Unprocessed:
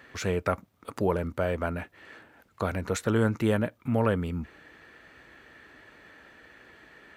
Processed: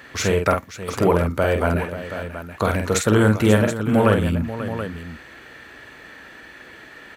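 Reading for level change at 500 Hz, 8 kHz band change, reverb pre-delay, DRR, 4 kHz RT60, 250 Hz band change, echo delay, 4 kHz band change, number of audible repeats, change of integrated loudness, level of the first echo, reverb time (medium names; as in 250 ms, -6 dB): +9.0 dB, +13.0 dB, no reverb, no reverb, no reverb, +9.0 dB, 47 ms, +12.0 dB, 3, +8.5 dB, -5.0 dB, no reverb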